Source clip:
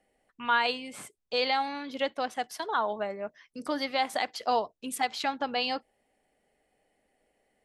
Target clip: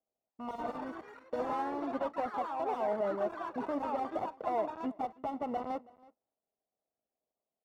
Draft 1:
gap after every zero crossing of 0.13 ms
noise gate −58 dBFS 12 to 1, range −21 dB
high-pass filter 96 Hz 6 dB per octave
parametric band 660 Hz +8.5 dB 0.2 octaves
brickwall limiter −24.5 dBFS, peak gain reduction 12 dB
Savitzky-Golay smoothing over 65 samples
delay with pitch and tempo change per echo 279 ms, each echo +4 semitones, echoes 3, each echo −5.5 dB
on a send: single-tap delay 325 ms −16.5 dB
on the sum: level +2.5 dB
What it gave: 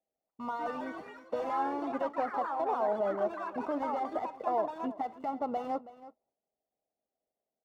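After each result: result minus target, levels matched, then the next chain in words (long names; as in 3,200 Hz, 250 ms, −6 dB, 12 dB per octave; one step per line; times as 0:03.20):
gap after every zero crossing: distortion −8 dB; echo-to-direct +6.5 dB
gap after every zero crossing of 0.31 ms
noise gate −58 dBFS 12 to 1, range −21 dB
high-pass filter 96 Hz 6 dB per octave
parametric band 660 Hz +8.5 dB 0.2 octaves
brickwall limiter −24.5 dBFS, peak gain reduction 10.5 dB
Savitzky-Golay smoothing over 65 samples
delay with pitch and tempo change per echo 279 ms, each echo +4 semitones, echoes 3, each echo −5.5 dB
on a send: single-tap delay 325 ms −16.5 dB
on the sum: level +2.5 dB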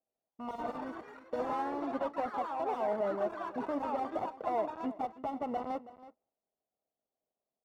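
echo-to-direct +6.5 dB
gap after every zero crossing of 0.31 ms
noise gate −58 dBFS 12 to 1, range −21 dB
high-pass filter 96 Hz 6 dB per octave
parametric band 660 Hz +8.5 dB 0.2 octaves
brickwall limiter −24.5 dBFS, peak gain reduction 10.5 dB
Savitzky-Golay smoothing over 65 samples
delay with pitch and tempo change per echo 279 ms, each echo +4 semitones, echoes 3, each echo −5.5 dB
on a send: single-tap delay 325 ms −23 dB
on the sum: level +2.5 dB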